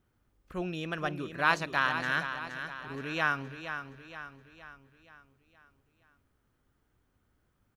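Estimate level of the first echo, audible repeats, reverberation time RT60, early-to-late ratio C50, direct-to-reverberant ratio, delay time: -9.0 dB, 5, none, none, none, 0.47 s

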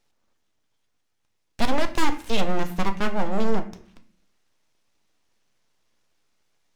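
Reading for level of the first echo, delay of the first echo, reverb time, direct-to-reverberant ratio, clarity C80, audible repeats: none, none, 0.50 s, 8.0 dB, 18.0 dB, none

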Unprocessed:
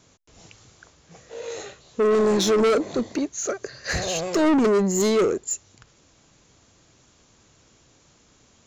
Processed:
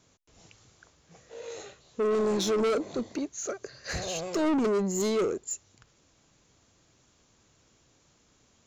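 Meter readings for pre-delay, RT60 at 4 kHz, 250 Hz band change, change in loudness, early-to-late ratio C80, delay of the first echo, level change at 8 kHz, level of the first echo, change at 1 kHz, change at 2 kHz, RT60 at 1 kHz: none, none, -7.0 dB, -7.0 dB, none, none, -7.0 dB, none, -7.0 dB, -8.5 dB, none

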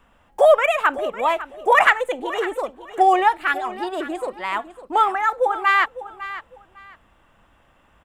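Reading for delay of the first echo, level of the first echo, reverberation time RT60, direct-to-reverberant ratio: 0.553 s, -14.5 dB, none, none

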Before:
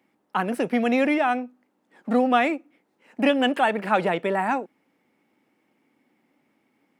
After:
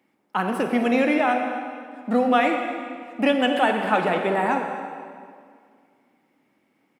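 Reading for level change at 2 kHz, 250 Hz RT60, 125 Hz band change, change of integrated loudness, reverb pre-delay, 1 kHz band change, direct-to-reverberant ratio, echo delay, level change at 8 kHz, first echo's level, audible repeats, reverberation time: +1.5 dB, 2.3 s, +1.5 dB, +1.0 dB, 29 ms, +1.5 dB, 3.5 dB, 0.256 s, n/a, -16.5 dB, 1, 2.1 s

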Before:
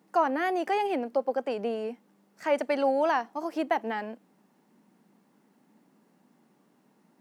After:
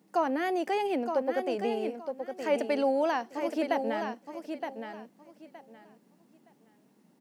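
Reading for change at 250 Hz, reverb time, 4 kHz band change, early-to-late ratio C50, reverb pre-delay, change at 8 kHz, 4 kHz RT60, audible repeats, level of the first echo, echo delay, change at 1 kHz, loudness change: +1.0 dB, none, +0.5 dB, none, none, n/a, none, 3, -7.0 dB, 0.918 s, -3.0 dB, -2.0 dB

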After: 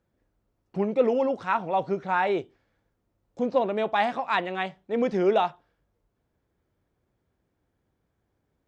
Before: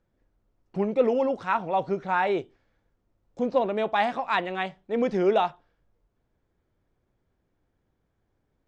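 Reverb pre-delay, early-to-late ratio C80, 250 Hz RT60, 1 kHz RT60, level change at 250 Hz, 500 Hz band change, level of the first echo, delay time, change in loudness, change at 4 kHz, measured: none, none, none, none, 0.0 dB, 0.0 dB, none, none, 0.0 dB, 0.0 dB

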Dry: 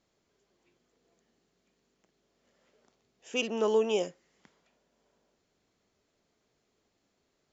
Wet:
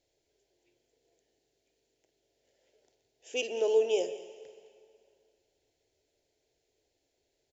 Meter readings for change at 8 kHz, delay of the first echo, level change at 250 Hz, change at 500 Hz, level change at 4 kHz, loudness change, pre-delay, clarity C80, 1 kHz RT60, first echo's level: n/a, 0.189 s, -9.5 dB, +1.0 dB, -2.0 dB, 0.0 dB, 9 ms, 12.5 dB, 2.3 s, -18.5 dB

